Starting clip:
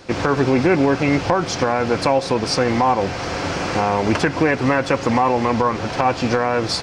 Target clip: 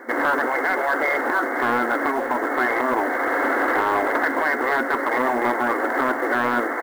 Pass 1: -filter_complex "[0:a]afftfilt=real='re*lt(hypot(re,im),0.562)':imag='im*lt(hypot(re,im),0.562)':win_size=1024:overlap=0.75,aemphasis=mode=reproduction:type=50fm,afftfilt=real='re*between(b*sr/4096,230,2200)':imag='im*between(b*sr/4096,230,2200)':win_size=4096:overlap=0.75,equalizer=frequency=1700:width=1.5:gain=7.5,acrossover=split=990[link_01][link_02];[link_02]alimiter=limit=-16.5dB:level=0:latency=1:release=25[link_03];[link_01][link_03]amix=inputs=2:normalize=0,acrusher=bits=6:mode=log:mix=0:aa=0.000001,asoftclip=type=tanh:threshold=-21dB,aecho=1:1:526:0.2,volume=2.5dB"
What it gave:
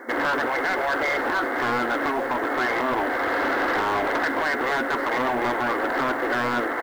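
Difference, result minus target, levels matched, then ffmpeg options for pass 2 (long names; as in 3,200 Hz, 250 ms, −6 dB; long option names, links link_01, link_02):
soft clipping: distortion +8 dB
-filter_complex "[0:a]afftfilt=real='re*lt(hypot(re,im),0.562)':imag='im*lt(hypot(re,im),0.562)':win_size=1024:overlap=0.75,aemphasis=mode=reproduction:type=50fm,afftfilt=real='re*between(b*sr/4096,230,2200)':imag='im*between(b*sr/4096,230,2200)':win_size=4096:overlap=0.75,equalizer=frequency=1700:width=1.5:gain=7.5,acrossover=split=990[link_01][link_02];[link_02]alimiter=limit=-16.5dB:level=0:latency=1:release=25[link_03];[link_01][link_03]amix=inputs=2:normalize=0,acrusher=bits=6:mode=log:mix=0:aa=0.000001,asoftclip=type=tanh:threshold=-13dB,aecho=1:1:526:0.2,volume=2.5dB"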